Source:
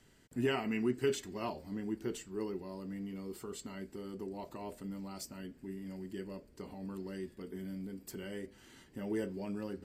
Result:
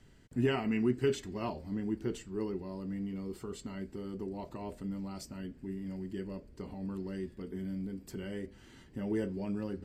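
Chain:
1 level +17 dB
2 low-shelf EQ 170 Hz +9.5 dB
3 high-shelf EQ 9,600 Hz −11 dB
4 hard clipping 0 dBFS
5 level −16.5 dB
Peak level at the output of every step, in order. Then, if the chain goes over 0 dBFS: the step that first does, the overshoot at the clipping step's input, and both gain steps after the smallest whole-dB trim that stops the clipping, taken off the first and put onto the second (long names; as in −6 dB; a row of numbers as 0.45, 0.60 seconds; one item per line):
−5.0, −2.0, −2.0, −2.0, −18.5 dBFS
no step passes full scale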